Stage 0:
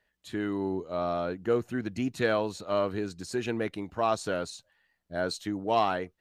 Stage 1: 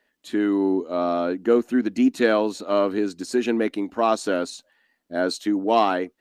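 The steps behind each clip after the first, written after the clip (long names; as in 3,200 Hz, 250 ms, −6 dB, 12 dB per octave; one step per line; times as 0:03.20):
low shelf with overshoot 180 Hz −11.5 dB, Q 3
level +5.5 dB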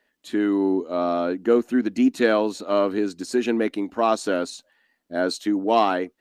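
no processing that can be heard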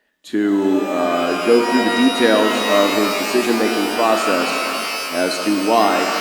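reverb with rising layers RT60 2.9 s, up +12 semitones, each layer −2 dB, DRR 4 dB
level +3.5 dB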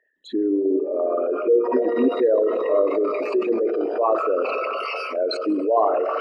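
spectral envelope exaggerated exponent 3
level −4 dB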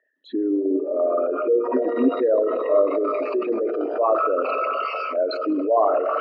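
loudspeaker in its box 200–4,400 Hz, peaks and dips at 270 Hz +7 dB, 620 Hz +6 dB, 1,300 Hz +8 dB
level −3.5 dB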